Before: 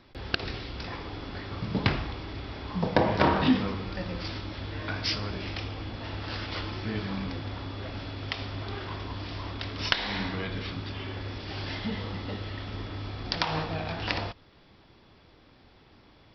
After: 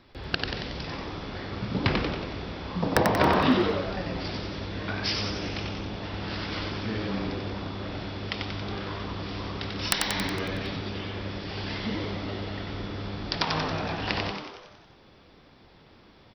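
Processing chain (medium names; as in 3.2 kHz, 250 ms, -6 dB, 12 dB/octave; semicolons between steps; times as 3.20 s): integer overflow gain 8 dB; frequency-shifting echo 92 ms, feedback 57%, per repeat +100 Hz, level -4 dB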